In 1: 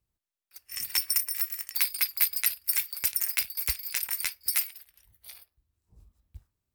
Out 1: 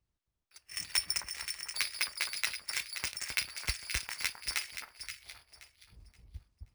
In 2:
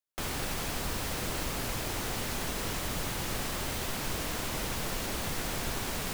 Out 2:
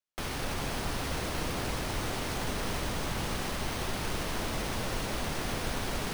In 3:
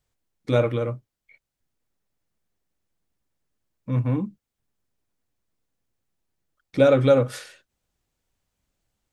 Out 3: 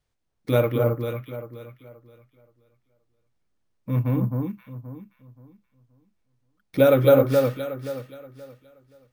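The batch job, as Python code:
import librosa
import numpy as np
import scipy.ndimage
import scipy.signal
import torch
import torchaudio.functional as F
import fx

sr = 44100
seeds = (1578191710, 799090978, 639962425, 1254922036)

y = fx.echo_alternate(x, sr, ms=263, hz=1400.0, feedback_pct=51, wet_db=-3.0)
y = np.repeat(scipy.signal.resample_poly(y, 1, 3), 3)[:len(y)]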